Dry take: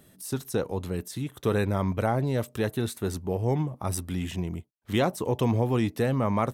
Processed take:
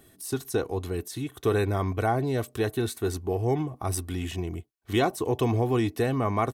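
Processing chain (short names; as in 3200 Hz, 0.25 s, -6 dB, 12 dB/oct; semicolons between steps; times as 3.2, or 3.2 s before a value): comb 2.7 ms, depth 55%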